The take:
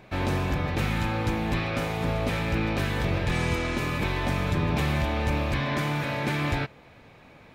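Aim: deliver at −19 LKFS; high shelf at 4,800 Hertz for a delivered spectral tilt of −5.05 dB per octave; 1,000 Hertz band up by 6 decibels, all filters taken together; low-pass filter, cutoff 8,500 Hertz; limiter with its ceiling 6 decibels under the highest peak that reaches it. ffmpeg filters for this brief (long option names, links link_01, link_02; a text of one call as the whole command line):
ffmpeg -i in.wav -af "lowpass=8500,equalizer=frequency=1000:width_type=o:gain=7.5,highshelf=frequency=4800:gain=-5.5,volume=9dB,alimiter=limit=-10dB:level=0:latency=1" out.wav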